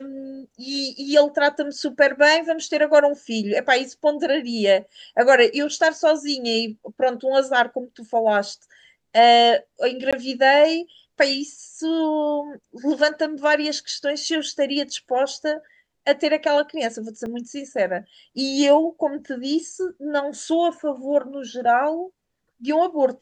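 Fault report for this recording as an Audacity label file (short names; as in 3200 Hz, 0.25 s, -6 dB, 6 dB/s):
10.110000	10.130000	gap 16 ms
17.260000	17.260000	gap 3.4 ms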